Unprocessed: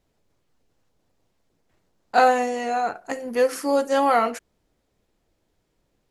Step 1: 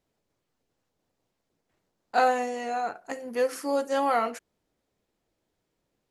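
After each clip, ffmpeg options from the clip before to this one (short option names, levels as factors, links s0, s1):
-af "lowshelf=f=71:g=-10.5,volume=0.531"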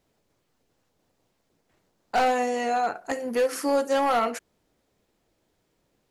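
-filter_complex "[0:a]asplit=2[s0][s1];[s1]acompressor=threshold=0.0316:ratio=10,volume=1.26[s2];[s0][s2]amix=inputs=2:normalize=0,asoftclip=type=hard:threshold=0.133"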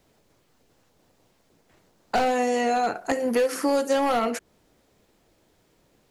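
-filter_complex "[0:a]acrossover=split=520|2000[s0][s1][s2];[s0]acompressor=threshold=0.0251:ratio=4[s3];[s1]acompressor=threshold=0.0158:ratio=4[s4];[s2]acompressor=threshold=0.00708:ratio=4[s5];[s3][s4][s5]amix=inputs=3:normalize=0,volume=2.51"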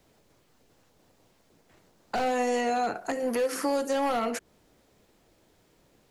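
-filter_complex "[0:a]acrossover=split=340[s0][s1];[s0]asoftclip=type=tanh:threshold=0.0211[s2];[s1]alimiter=limit=0.1:level=0:latency=1:release=217[s3];[s2][s3]amix=inputs=2:normalize=0"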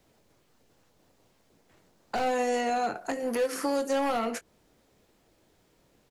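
-filter_complex "[0:a]aeval=exprs='0.126*(cos(1*acos(clip(val(0)/0.126,-1,1)))-cos(1*PI/2))+0.00891*(cos(3*acos(clip(val(0)/0.126,-1,1)))-cos(3*PI/2))':c=same,asplit=2[s0][s1];[s1]adelay=22,volume=0.224[s2];[s0][s2]amix=inputs=2:normalize=0"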